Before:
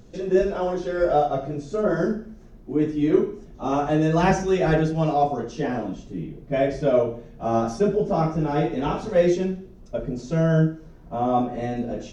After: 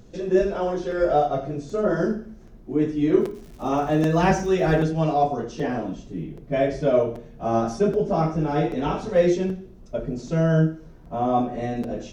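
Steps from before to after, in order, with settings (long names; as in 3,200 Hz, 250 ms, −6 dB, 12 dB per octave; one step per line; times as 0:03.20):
0:03.20–0:04.82: surface crackle 250 per second −40 dBFS
regular buffer underruns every 0.78 s, samples 256, repeat, from 0:00.91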